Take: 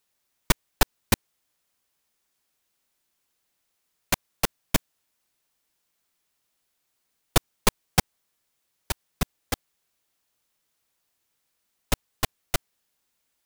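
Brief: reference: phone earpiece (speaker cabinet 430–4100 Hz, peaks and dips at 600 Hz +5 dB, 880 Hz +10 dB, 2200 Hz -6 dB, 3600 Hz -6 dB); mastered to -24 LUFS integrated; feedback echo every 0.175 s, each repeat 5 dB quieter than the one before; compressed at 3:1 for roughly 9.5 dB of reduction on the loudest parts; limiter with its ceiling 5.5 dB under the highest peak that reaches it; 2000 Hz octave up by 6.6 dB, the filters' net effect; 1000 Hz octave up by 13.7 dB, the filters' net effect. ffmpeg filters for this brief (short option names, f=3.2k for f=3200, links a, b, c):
-af "equalizer=f=1k:t=o:g=7.5,equalizer=f=2k:t=o:g=8.5,acompressor=threshold=-24dB:ratio=3,alimiter=limit=-11dB:level=0:latency=1,highpass=430,equalizer=f=600:t=q:w=4:g=5,equalizer=f=880:t=q:w=4:g=10,equalizer=f=2.2k:t=q:w=4:g=-6,equalizer=f=3.6k:t=q:w=4:g=-6,lowpass=f=4.1k:w=0.5412,lowpass=f=4.1k:w=1.3066,aecho=1:1:175|350|525|700|875|1050|1225:0.562|0.315|0.176|0.0988|0.0553|0.031|0.0173,volume=8.5dB"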